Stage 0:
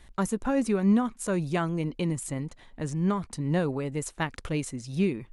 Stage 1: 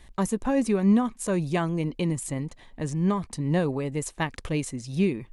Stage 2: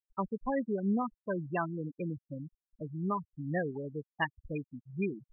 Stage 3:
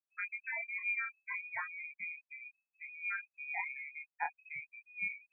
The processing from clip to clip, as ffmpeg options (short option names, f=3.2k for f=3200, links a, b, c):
-af "bandreject=f=1.4k:w=7.2,volume=2dB"
-af "afftfilt=real='re*gte(hypot(re,im),0.112)':imag='im*gte(hypot(re,im),0.112)':win_size=1024:overlap=0.75,tiltshelf=f=900:g=-9,volume=-2.5dB"
-af "flanger=delay=20:depth=5.7:speed=0.6,lowpass=f=2.2k:t=q:w=0.5098,lowpass=f=2.2k:t=q:w=0.6013,lowpass=f=2.2k:t=q:w=0.9,lowpass=f=2.2k:t=q:w=2.563,afreqshift=-2600,equalizer=f=810:t=o:w=0.67:g=5,volume=-4.5dB"